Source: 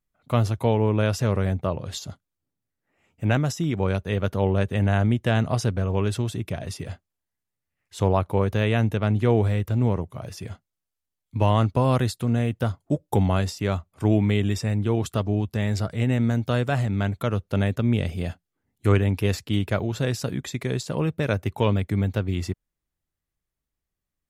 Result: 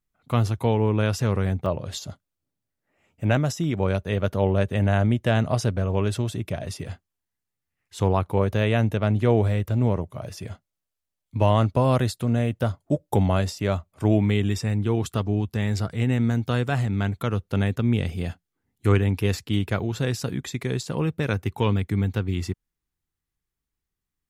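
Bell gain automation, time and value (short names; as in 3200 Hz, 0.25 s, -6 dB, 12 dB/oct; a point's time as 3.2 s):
bell 600 Hz 0.24 oct
-6 dB
from 1.66 s +4 dB
from 6.86 s -5.5 dB
from 8.37 s +4.5 dB
from 14.26 s -6.5 dB
from 21.3 s -13 dB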